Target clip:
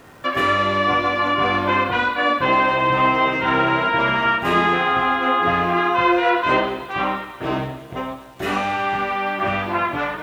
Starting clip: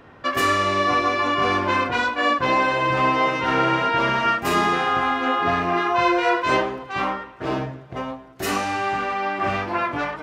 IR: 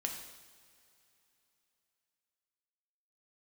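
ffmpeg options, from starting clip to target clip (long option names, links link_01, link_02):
-filter_complex "[0:a]asplit=2[link_01][link_02];[link_02]highshelf=frequency=4900:width_type=q:width=3:gain=-9.5[link_03];[1:a]atrim=start_sample=2205,asetrate=36162,aresample=44100[link_04];[link_03][link_04]afir=irnorm=-1:irlink=0,volume=-5dB[link_05];[link_01][link_05]amix=inputs=2:normalize=0,acrusher=bits=9:dc=4:mix=0:aa=0.000001,acrossover=split=3400[link_06][link_07];[link_07]acompressor=threshold=-39dB:ratio=4:attack=1:release=60[link_08];[link_06][link_08]amix=inputs=2:normalize=0,volume=-2dB"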